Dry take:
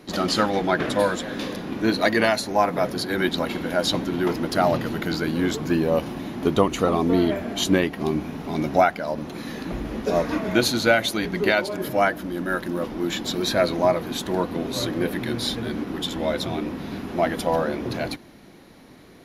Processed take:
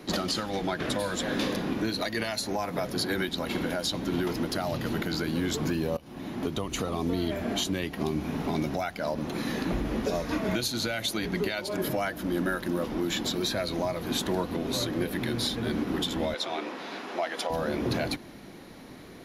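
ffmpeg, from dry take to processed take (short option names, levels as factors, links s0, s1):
-filter_complex "[0:a]asettb=1/sr,asplit=3[s0][s1][s2];[s0]atrim=end=16.344[s3];[s1]atrim=start=16.34:end=17.5,asetpts=PTS-STARTPTS,afade=t=in:d=0.004:c=qsin,afade=t=out:st=1.156:d=0.004:c=qsin,highpass=550,lowpass=7700[s4];[s2]atrim=start=17.496[s5];[s3][s4]acrossfade=d=0.004:c1=hsin:c2=qsin[s6];[s6][s5]acrossfade=d=0.004:c1=qsin:c2=hsin,asplit=2[s7][s8];[s7]atrim=end=5.97,asetpts=PTS-STARTPTS,afade=t=out:st=5.966:d=0.004:c=hsin:silence=0.0841395[s9];[s8]atrim=start=5.97,asetpts=PTS-STARTPTS,afade=t=in:d=0.73:silence=0.0841395[s10];[s9][s10]concat=n=2:v=0:a=1,acrossover=split=120|3000[s11][s12][s13];[s12]acompressor=threshold=0.0501:ratio=6[s14];[s11][s14][s13]amix=inputs=3:normalize=0,alimiter=limit=0.0944:level=0:latency=1:release=279,volume=1.26"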